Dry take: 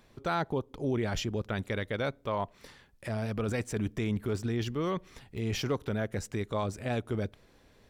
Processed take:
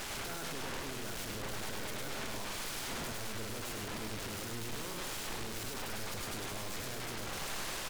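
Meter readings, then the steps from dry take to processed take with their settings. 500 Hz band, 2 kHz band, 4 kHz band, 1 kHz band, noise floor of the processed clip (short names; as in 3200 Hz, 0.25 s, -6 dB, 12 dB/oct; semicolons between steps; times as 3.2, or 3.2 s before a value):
-11.0 dB, -2.0 dB, +2.0 dB, -5.5 dB, -41 dBFS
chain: per-bin compression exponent 0.4; de-esser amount 95%; bell 1500 Hz +6.5 dB 0.23 oct; tube stage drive 40 dB, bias 0.3; sine folder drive 11 dB, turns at -36.5 dBFS; on a send: echo 0.103 s -3 dB; on the sum: gain -1 dB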